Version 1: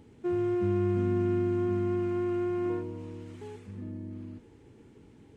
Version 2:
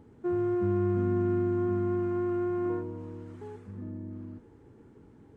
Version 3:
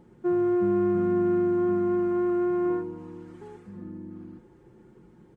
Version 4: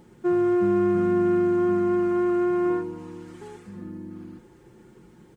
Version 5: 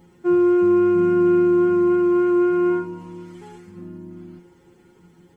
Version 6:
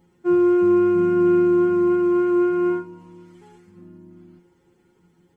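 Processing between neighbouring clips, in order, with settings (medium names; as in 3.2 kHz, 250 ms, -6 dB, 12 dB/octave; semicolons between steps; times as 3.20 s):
resonant high shelf 1.9 kHz -7.5 dB, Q 1.5
comb 5.6 ms, depth 76%
treble shelf 2.1 kHz +11 dB; trim +2 dB
inharmonic resonator 86 Hz, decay 0.23 s, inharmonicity 0.002; trim +7.5 dB
upward expansion 1.5:1, over -30 dBFS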